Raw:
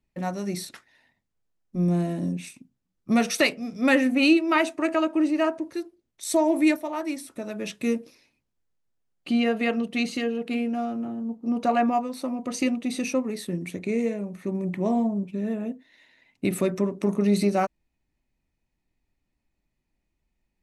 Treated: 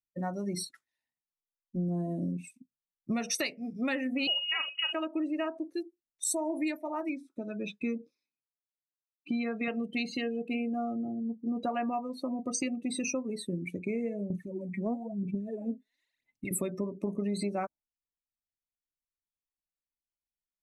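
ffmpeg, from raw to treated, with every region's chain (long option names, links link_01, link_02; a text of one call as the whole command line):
ffmpeg -i in.wav -filter_complex "[0:a]asettb=1/sr,asplit=3[link_01][link_02][link_03];[link_01]atrim=end=4.274[link_04];[link_02]atrim=start=4.27:end=4.93,asetpts=PTS-STARTPTS,afade=type=in:duration=0.004:curve=qsin,afade=type=out:start_time=0.656:duration=0.004:curve=qsin,lowpass=frequency=2700:width_type=q:width=0.5098,lowpass=frequency=2700:width_type=q:width=0.6013,lowpass=frequency=2700:width_type=q:width=0.9,lowpass=frequency=2700:width_type=q:width=2.563,afreqshift=-3200,acompressor=mode=upward:threshold=-30dB:ratio=2.5:attack=3.2:release=140:knee=2.83:detection=peak,asplit=2[link_05][link_06];[link_06]adelay=44,volume=-10dB[link_07];[link_05][link_07]amix=inputs=2:normalize=0,atrim=end_sample=29106[link_08];[link_03]atrim=start=4.926[link_09];[link_04][link_08]acrossfade=duration=0.004:curve1=hsin:curve2=qsin[link_10];[link_10][link_09]acrossfade=duration=0.004:curve1=qsin:curve2=hsin,asettb=1/sr,asplit=3[link_11][link_12][link_13];[link_11]atrim=end=7.094[link_14];[link_12]atrim=start=7.09:end=9.68,asetpts=PTS-STARTPTS,afade=type=in:duration=0.004:curve=qsin,afade=type=out:start_time=2.586:duration=0.004:curve=qsin,highpass=160,lowpass=4800,bandreject=frequency=2800:width=7.2,aecho=1:1:0.8:0.34,atrim=end_sample=114219[link_15];[link_13]atrim=start=9.676[link_16];[link_14][link_15]acrossfade=duration=0.004:curve1=hsin:curve2=qsin[link_17];[link_17][link_16]acrossfade=duration=0.004:curve1=qsin:curve2=hsin,asettb=1/sr,asplit=3[link_18][link_19][link_20];[link_18]atrim=end=14.304[link_21];[link_19]atrim=start=14.3:end=16.51,asetpts=PTS-STARTPTS,afade=type=in:duration=0.004:curve=qsin,afade=type=out:start_time=2.206:duration=0.004:curve=qsin,acompressor=threshold=-35dB:ratio=2:attack=3.2:release=140:knee=1:detection=peak,aphaser=in_gain=1:out_gain=1:delay=4.8:decay=0.75:speed=1:type=sinusoidal[link_22];[link_20]atrim=start=16.506[link_23];[link_21][link_22]acrossfade=duration=0.004:curve1=hsin:curve2=qsin[link_24];[link_24][link_23]acrossfade=duration=0.004:curve1=qsin:curve2=hsin,afftdn=noise_reduction=27:noise_floor=-34,equalizer=frequency=11000:width=0.41:gain=14.5,acompressor=threshold=-26dB:ratio=6,volume=-3dB" out.wav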